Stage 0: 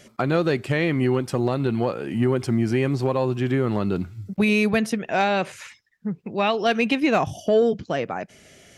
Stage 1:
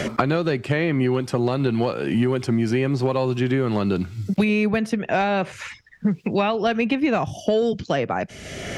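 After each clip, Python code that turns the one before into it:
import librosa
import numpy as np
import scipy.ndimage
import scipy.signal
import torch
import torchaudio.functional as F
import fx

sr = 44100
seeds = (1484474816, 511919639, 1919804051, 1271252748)

y = fx.high_shelf(x, sr, hz=8700.0, db=-11.0)
y = fx.band_squash(y, sr, depth_pct=100)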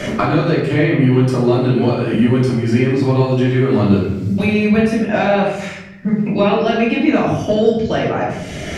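y = fx.room_shoebox(x, sr, seeds[0], volume_m3=290.0, walls='mixed', distance_m=2.7)
y = y * 10.0 ** (-3.0 / 20.0)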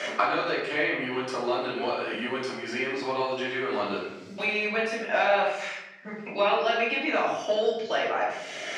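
y = fx.bandpass_edges(x, sr, low_hz=680.0, high_hz=6400.0)
y = y * 10.0 ** (-4.0 / 20.0)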